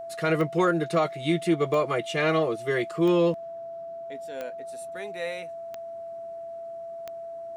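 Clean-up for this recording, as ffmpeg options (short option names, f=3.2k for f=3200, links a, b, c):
-af "adeclick=t=4,bandreject=f=670:w=30"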